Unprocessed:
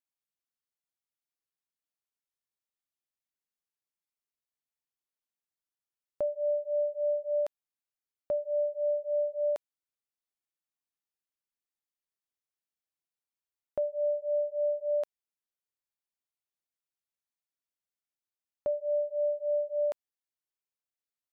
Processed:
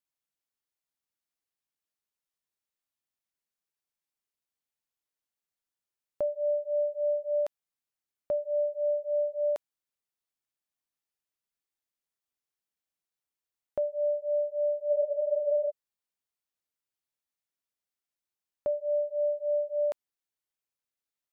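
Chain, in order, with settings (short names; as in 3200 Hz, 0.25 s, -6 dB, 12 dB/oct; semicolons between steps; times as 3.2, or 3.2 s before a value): spectral freeze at 14.92, 0.77 s; gain +1 dB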